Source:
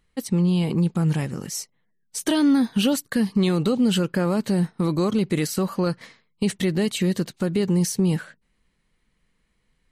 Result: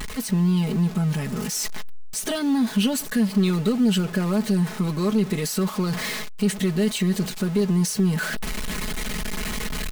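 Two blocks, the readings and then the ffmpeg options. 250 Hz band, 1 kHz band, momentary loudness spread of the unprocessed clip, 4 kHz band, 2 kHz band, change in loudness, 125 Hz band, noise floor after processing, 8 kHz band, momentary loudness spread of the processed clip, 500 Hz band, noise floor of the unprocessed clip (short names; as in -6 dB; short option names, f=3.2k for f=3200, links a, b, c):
0.0 dB, 0.0 dB, 9 LU, +1.5 dB, +4.0 dB, -1.0 dB, 0.0 dB, -34 dBFS, +3.0 dB, 9 LU, -1.5 dB, -70 dBFS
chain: -af "aeval=exprs='val(0)+0.5*0.0473*sgn(val(0))':c=same,areverse,acompressor=mode=upward:threshold=-20dB:ratio=2.5,areverse,aecho=1:1:4.7:0.75,volume=-5dB"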